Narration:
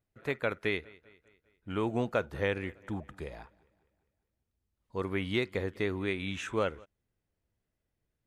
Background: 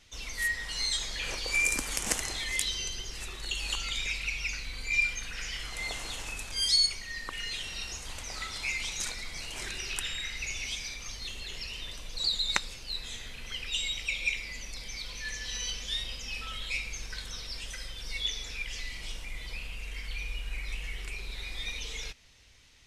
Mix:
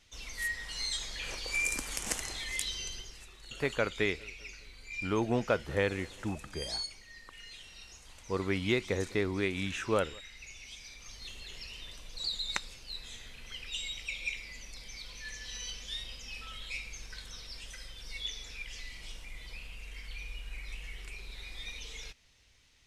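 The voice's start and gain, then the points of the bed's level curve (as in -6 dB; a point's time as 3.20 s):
3.35 s, +1.0 dB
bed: 2.95 s -4.5 dB
3.27 s -13 dB
10.65 s -13 dB
11.28 s -6 dB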